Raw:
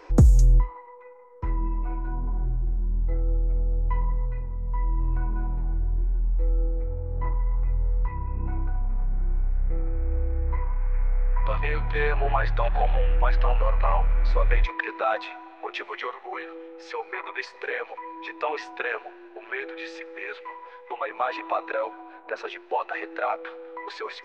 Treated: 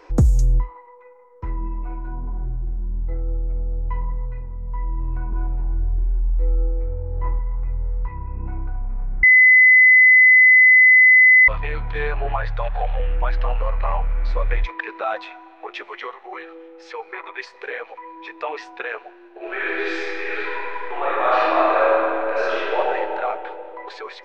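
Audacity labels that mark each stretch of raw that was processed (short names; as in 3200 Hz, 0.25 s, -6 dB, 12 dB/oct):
5.300000	7.390000	doubler 22 ms -3.5 dB
9.230000	11.480000	bleep 2020 Hz -7.5 dBFS
12.360000	13.000000	Chebyshev band-stop 160–450 Hz
19.360000	22.760000	reverb throw, RT60 2.8 s, DRR -10.5 dB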